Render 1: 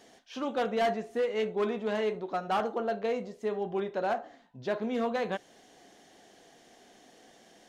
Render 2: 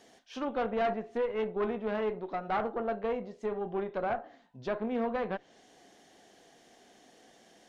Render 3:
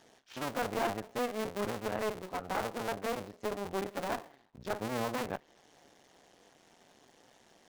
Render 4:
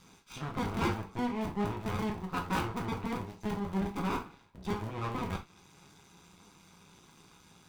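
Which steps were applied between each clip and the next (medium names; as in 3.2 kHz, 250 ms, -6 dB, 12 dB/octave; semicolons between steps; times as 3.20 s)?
low-pass that closes with the level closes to 2.1 kHz, closed at -28.5 dBFS; Chebyshev shaper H 2 -13 dB, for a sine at -22.5 dBFS; trim -2 dB
cycle switcher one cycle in 2, muted
comb filter that takes the minimum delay 0.81 ms; gated-style reverb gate 100 ms falling, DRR 1.5 dB; trim +3.5 dB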